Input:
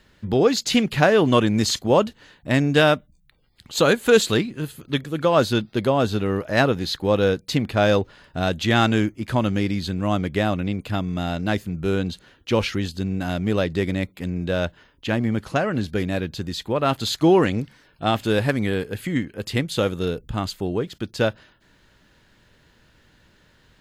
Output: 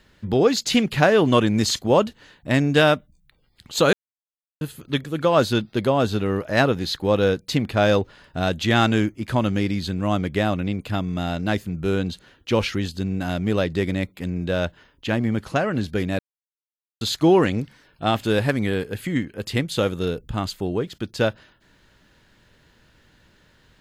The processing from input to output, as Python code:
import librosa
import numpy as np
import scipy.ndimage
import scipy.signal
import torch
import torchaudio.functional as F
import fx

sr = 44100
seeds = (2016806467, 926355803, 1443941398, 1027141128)

y = fx.edit(x, sr, fx.silence(start_s=3.93, length_s=0.68),
    fx.silence(start_s=16.19, length_s=0.82), tone=tone)